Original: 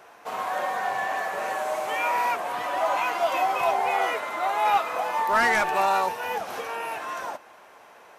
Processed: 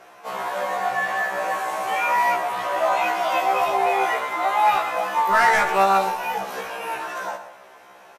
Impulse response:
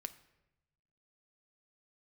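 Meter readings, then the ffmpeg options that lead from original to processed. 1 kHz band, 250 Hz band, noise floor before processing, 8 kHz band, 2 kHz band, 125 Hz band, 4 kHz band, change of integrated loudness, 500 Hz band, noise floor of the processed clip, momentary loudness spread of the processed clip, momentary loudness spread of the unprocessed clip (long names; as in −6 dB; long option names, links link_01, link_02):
+4.0 dB, +3.5 dB, −51 dBFS, +3.0 dB, +4.0 dB, can't be measured, +3.0 dB, +4.0 dB, +3.5 dB, −48 dBFS, 12 LU, 10 LU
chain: -filter_complex "[0:a]aecho=1:1:117:0.224[link_01];[1:a]atrim=start_sample=2205,asetrate=31752,aresample=44100[link_02];[link_01][link_02]afir=irnorm=-1:irlink=0,afftfilt=real='re*1.73*eq(mod(b,3),0)':imag='im*1.73*eq(mod(b,3),0)':win_size=2048:overlap=0.75,volume=7dB"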